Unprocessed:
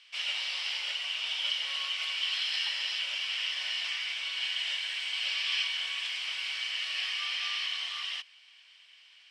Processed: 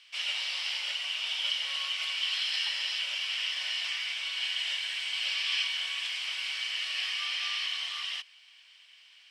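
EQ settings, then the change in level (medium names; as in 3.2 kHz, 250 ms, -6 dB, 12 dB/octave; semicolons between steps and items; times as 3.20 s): brick-wall FIR high-pass 440 Hz; treble shelf 9.3 kHz +7 dB; 0.0 dB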